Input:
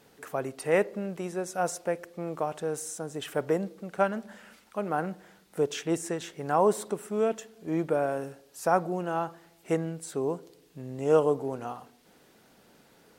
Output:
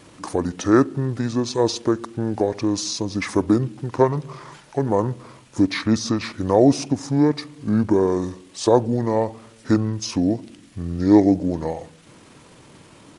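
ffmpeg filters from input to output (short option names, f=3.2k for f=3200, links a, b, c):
-filter_complex "[0:a]asplit=2[a][b];[b]acompressor=threshold=-34dB:ratio=6,volume=-2.5dB[c];[a][c]amix=inputs=2:normalize=0,asetrate=29433,aresample=44100,atempo=1.49831,volume=7.5dB"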